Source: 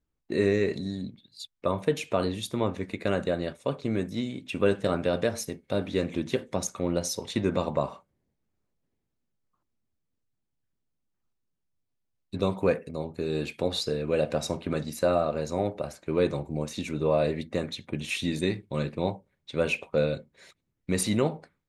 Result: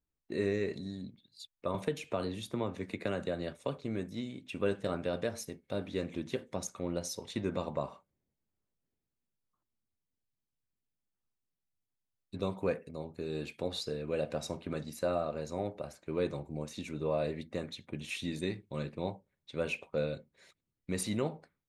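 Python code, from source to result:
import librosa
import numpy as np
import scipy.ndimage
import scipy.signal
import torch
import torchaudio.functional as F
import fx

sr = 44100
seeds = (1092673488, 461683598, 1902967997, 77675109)

y = fx.band_squash(x, sr, depth_pct=70, at=(1.74, 3.78))
y = y * librosa.db_to_amplitude(-8.0)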